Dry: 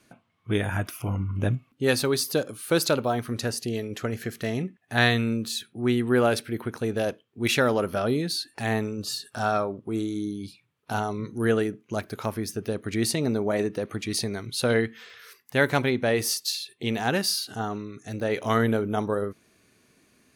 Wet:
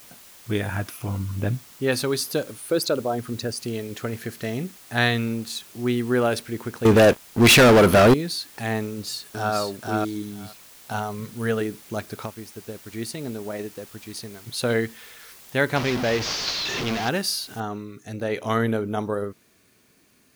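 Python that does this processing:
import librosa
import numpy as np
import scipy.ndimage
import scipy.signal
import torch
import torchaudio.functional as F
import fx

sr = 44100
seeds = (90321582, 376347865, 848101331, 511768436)

y = fx.lowpass(x, sr, hz=3700.0, slope=24, at=(1.22, 1.91), fade=0.02)
y = fx.envelope_sharpen(y, sr, power=1.5, at=(2.59, 3.6), fade=0.02)
y = fx.law_mismatch(y, sr, coded='A', at=(5.27, 5.67))
y = fx.leveller(y, sr, passes=5, at=(6.85, 8.14))
y = fx.echo_throw(y, sr, start_s=8.86, length_s=0.7, ms=480, feedback_pct=10, wet_db=-2.0)
y = fx.peak_eq(y, sr, hz=330.0, db=-13.5, octaves=0.29, at=(10.22, 11.61))
y = fx.upward_expand(y, sr, threshold_db=-45.0, expansion=1.5, at=(12.25, 14.46), fade=0.02)
y = fx.delta_mod(y, sr, bps=32000, step_db=-21.0, at=(15.76, 17.09))
y = fx.noise_floor_step(y, sr, seeds[0], at_s=17.6, before_db=-48, after_db=-65, tilt_db=0.0)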